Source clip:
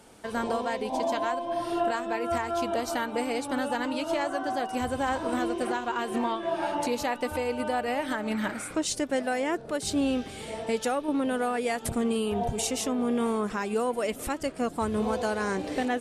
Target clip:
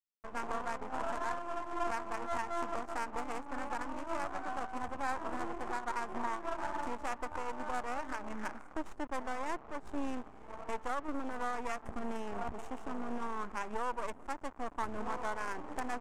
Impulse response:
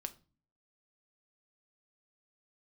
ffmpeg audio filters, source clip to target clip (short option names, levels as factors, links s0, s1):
-af "acrusher=bits=4:dc=4:mix=0:aa=0.000001,adynamicsmooth=sensitivity=4:basefreq=580,equalizer=f=125:t=o:w=1:g=-12,equalizer=f=500:t=o:w=1:g=-6,equalizer=f=1000:t=o:w=1:g=6,equalizer=f=4000:t=o:w=1:g=-8,equalizer=f=8000:t=o:w=1:g=9,volume=0.631"